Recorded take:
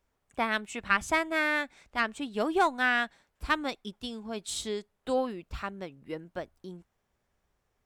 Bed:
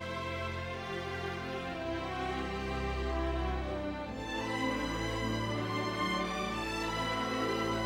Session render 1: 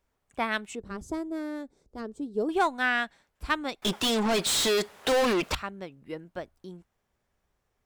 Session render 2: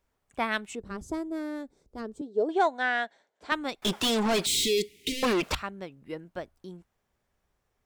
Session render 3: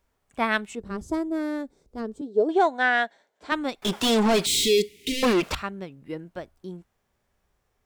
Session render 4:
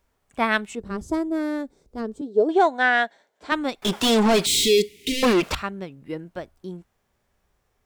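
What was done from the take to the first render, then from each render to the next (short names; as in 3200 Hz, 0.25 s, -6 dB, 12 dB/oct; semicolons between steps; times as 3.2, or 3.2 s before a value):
0.75–2.49 EQ curve 240 Hz 0 dB, 440 Hz +6 dB, 640 Hz -8 dB, 1300 Hz -16 dB, 2500 Hz -27 dB, 4800 Hz -10 dB; 3.82–5.55 overdrive pedal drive 38 dB, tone 6400 Hz, clips at -17.5 dBFS
2.21–3.52 speaker cabinet 320–6900 Hz, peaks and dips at 440 Hz +4 dB, 650 Hz +6 dB, 1200 Hz -7 dB, 2600 Hz -9 dB, 5100 Hz -6 dB; 4.46–5.23 Chebyshev band-stop 430–2100 Hz, order 5
harmonic-percussive split harmonic +6 dB
gain +2.5 dB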